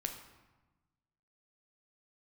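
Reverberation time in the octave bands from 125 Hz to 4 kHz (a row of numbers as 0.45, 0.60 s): 1.7, 1.5, 1.1, 1.2, 1.0, 0.80 s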